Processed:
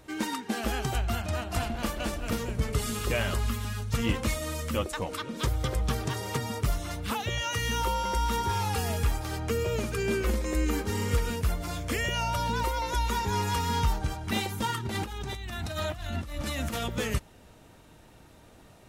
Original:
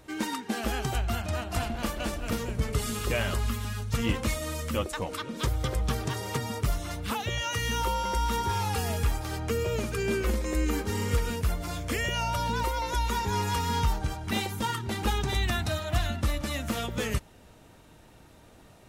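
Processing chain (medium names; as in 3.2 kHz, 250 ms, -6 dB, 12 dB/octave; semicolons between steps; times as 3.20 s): 14.85–16.88 s: compressor with a negative ratio -34 dBFS, ratio -1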